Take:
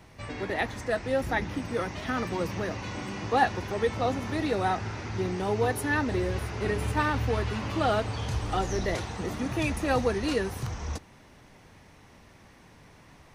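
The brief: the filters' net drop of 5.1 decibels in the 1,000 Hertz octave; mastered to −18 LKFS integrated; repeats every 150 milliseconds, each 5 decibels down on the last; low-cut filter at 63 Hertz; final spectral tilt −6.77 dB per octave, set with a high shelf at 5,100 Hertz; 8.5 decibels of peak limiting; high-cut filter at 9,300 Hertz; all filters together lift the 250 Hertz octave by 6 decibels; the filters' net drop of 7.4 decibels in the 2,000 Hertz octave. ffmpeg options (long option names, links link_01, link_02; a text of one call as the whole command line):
ffmpeg -i in.wav -af "highpass=63,lowpass=9300,equalizer=frequency=250:width_type=o:gain=8,equalizer=frequency=1000:width_type=o:gain=-6.5,equalizer=frequency=2000:width_type=o:gain=-6.5,highshelf=frequency=5100:gain=-4.5,alimiter=limit=-20.5dB:level=0:latency=1,aecho=1:1:150|300|450|600|750|900|1050:0.562|0.315|0.176|0.0988|0.0553|0.031|0.0173,volume=11dB" out.wav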